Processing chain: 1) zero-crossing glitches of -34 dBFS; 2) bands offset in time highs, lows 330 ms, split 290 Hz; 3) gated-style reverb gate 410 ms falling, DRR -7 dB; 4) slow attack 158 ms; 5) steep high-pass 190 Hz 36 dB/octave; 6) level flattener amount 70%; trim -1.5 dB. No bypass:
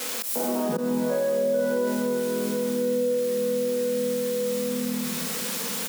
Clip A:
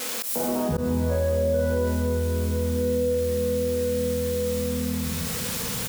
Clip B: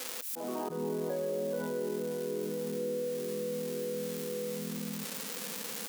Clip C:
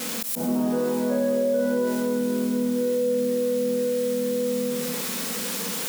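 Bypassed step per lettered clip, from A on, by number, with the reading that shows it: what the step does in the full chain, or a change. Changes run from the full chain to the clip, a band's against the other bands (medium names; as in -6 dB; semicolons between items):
5, 125 Hz band +14.0 dB; 3, crest factor change +5.0 dB; 2, 250 Hz band +3.0 dB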